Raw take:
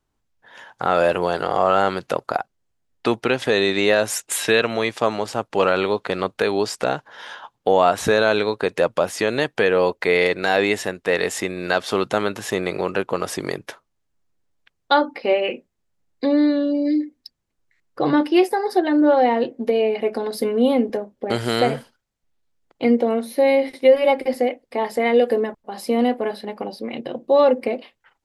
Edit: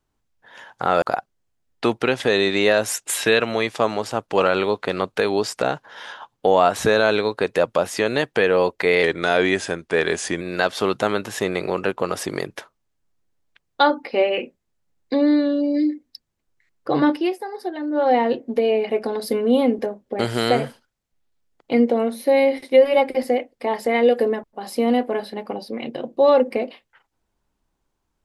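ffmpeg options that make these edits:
-filter_complex "[0:a]asplit=6[a][b][c][d][e][f];[a]atrim=end=1.022[g];[b]atrim=start=2.238:end=10.254[h];[c]atrim=start=10.25:end=11.52,asetpts=PTS-STARTPTS,asetrate=40572,aresample=44100,atrim=end_sample=60877,asetpts=PTS-STARTPTS[i];[d]atrim=start=11.516:end=18.42,asetpts=PTS-STARTPTS,afade=t=out:st=6.704:d=0.2:silence=0.334965[j];[e]atrim=start=18.42:end=19.03,asetpts=PTS-STARTPTS,volume=-9.5dB[k];[f]atrim=start=19.03,asetpts=PTS-STARTPTS,afade=t=in:d=0.2:silence=0.334965[l];[g][h]acrossfade=d=0.004:c1=hsin:c2=hsin[m];[m][i]acrossfade=d=0.004:c1=hsin:c2=hsin[n];[j][k][l]concat=n=3:v=0:a=1[o];[n][o]acrossfade=d=0.004:c1=hsin:c2=hsin"

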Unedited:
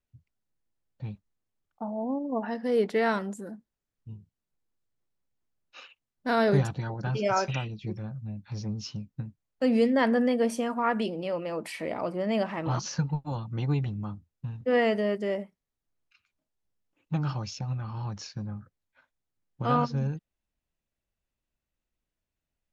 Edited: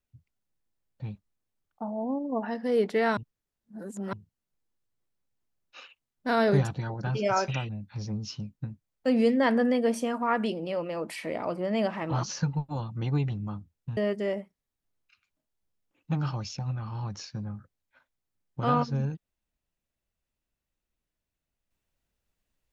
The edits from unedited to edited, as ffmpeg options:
-filter_complex "[0:a]asplit=5[a][b][c][d][e];[a]atrim=end=3.172[f];[b]atrim=start=3.168:end=4.132,asetpts=PTS-STARTPTS,areverse[g];[c]atrim=start=4.128:end=7.692[h];[d]atrim=start=8.248:end=14.532[i];[e]atrim=start=14.988[j];[f][g]acrossfade=d=0.004:c1=hsin:c2=hsin[k];[k][h]acrossfade=d=0.004:c1=hsin:c2=hsin[l];[l][i]acrossfade=d=0.004:c1=hsin:c2=hsin[m];[m][j]acrossfade=d=0.004:c1=hsin:c2=hsin"

